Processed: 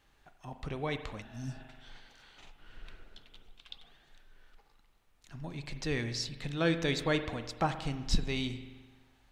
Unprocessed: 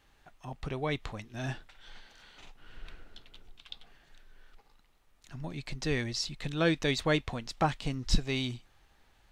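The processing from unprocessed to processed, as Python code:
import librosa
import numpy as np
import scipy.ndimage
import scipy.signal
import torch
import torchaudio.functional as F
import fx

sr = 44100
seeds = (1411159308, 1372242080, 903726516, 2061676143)

y = fx.rev_spring(x, sr, rt60_s=1.3, pass_ms=(42,), chirp_ms=60, drr_db=9.0)
y = fx.spec_repair(y, sr, seeds[0], start_s=1.25, length_s=0.32, low_hz=280.0, high_hz=4200.0, source='after')
y = F.gain(torch.from_numpy(y), -2.5).numpy()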